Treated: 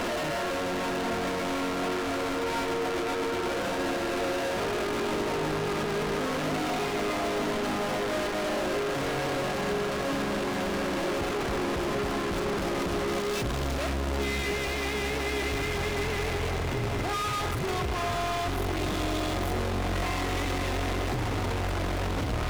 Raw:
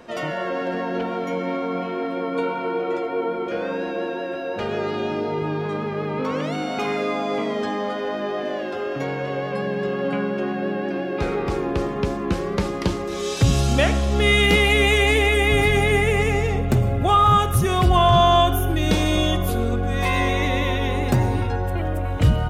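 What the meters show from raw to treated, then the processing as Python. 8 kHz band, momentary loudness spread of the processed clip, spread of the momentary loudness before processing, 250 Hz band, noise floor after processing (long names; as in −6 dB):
−3.0 dB, 1 LU, 10 LU, −6.5 dB, −30 dBFS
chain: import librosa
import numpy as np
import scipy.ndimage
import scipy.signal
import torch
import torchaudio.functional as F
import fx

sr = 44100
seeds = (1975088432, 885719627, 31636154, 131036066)

p1 = np.sign(x) * np.sqrt(np.mean(np.square(x)))
p2 = fx.lowpass(p1, sr, hz=2100.0, slope=6)
p3 = p2 + 0.46 * np.pad(p2, (int(3.0 * sr / 1000.0), 0))[:len(p2)]
p4 = 10.0 ** (-29.0 / 20.0) * np.tanh(p3 / 10.0 ** (-29.0 / 20.0))
y = p4 + fx.echo_diffused(p4, sr, ms=969, feedback_pct=79, wet_db=-10.5, dry=0)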